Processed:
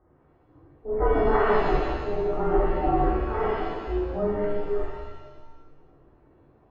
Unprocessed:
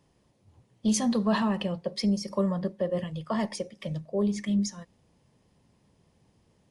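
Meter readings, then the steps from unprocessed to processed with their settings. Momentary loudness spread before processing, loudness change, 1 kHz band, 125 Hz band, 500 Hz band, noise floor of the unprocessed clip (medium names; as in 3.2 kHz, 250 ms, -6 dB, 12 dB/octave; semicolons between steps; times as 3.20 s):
9 LU, +3.0 dB, +10.0 dB, +0.5 dB, +8.0 dB, -68 dBFS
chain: steep low-pass 1.7 kHz 72 dB/octave; transient shaper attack -11 dB, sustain +1 dB; ring modulator 210 Hz; pitch-shifted reverb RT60 1.2 s, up +7 st, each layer -8 dB, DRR -6.5 dB; trim +3.5 dB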